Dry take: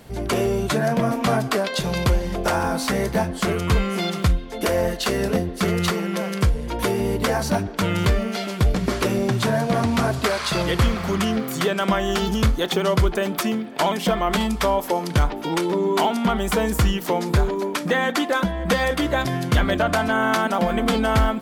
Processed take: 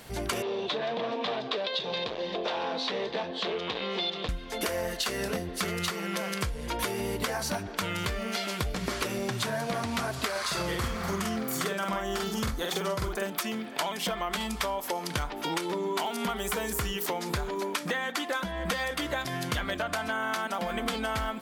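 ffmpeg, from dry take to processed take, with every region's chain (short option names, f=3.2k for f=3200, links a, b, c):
-filter_complex "[0:a]asettb=1/sr,asplit=3[a][b][c];[a]atrim=end=0.424[d];[b]atrim=start=0.42:end=4.29,asetpts=PTS-STARTPTS,afade=t=in:d=0.004:c=qsin,afade=t=out:st=3.866:d=0.004:c=qsin,volume=21dB,asoftclip=hard,volume=-21dB,highpass=250,equalizer=f=470:t=q:w=4:g=7,equalizer=f=1.4k:t=q:w=4:g=-9,equalizer=f=2.1k:t=q:w=4:g=-5,equalizer=f=3.7k:t=q:w=4:g=8,lowpass=f=4.1k:w=0.5412,lowpass=f=4.1k:w=1.3066[e];[c]atrim=start=4.286[f];[d][e]acrossfade=d=0.004:c1=hsin:c2=qsin[g];[g][f]acrossfade=d=0.004:c1=qsin:c2=hsin,asettb=1/sr,asplit=3[h][i][j];[h]atrim=end=10.314[k];[i]atrim=start=10.31:end=13.3,asetpts=PTS-STARTPTS,afade=t=in:d=0.004:c=qsin,afade=t=out:st=2.986:d=0.004:c=qsin,equalizer=f=3k:w=1.3:g=-6,asplit=2[l][m];[m]adelay=46,volume=-2dB[n];[l][n]amix=inputs=2:normalize=0,atrim=end_sample=131859[o];[j]atrim=start=13.296[p];[k][o]acrossfade=d=0.004:c1=hsin:c2=qsin[q];[q][p]acrossfade=d=0.004:c1=qsin:c2=hsin,asettb=1/sr,asplit=3[r][s][t];[r]atrim=end=16.064[u];[s]atrim=start=16.06:end=17.06,asetpts=PTS-STARTPTS,afade=t=in:d=0.004:c=qsin,afade=t=out:st=0.996:d=0.004:c=qsin,acrossover=split=2600[v][w];[w]acompressor=threshold=-34dB:ratio=4:attack=1:release=60[x];[v][x]amix=inputs=2:normalize=0,highshelf=f=5.5k:g=9.5,aeval=exprs='val(0)+0.0447*sin(2*PI*410*n/s)':c=same[y];[t]atrim=start=17.056[z];[u][y]acrossfade=d=0.004:c1=hsin:c2=qsin[aa];[aa][z]acrossfade=d=0.004:c1=qsin:c2=hsin,tiltshelf=f=700:g=-5,acompressor=threshold=-26dB:ratio=6,volume=-2dB"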